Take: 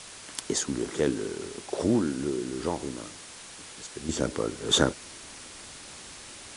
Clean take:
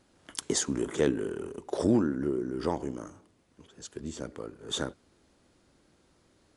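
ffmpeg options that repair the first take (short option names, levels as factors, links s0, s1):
-af "afwtdn=0.0079,asetnsamples=n=441:p=0,asendcmd='4.09 volume volume -10.5dB',volume=1"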